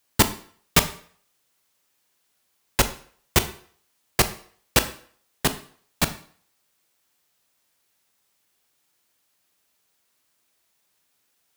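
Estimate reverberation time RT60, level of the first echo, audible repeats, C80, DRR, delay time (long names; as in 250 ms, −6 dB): 0.50 s, no echo audible, no echo audible, 17.5 dB, 10.0 dB, no echo audible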